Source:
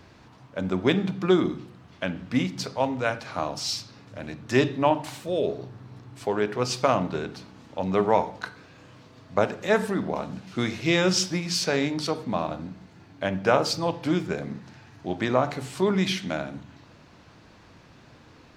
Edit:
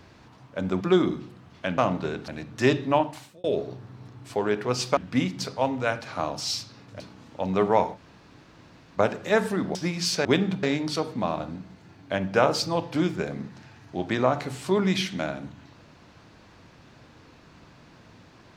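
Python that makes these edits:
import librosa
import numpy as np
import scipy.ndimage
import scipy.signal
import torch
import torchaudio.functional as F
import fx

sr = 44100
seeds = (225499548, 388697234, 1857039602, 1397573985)

y = fx.edit(x, sr, fx.move(start_s=0.81, length_s=0.38, to_s=11.74),
    fx.swap(start_s=2.16, length_s=2.03, other_s=6.88, other_length_s=0.5),
    fx.fade_out_span(start_s=4.84, length_s=0.51),
    fx.room_tone_fill(start_s=8.34, length_s=1.01, crossfade_s=0.04),
    fx.cut(start_s=10.13, length_s=1.11), tone=tone)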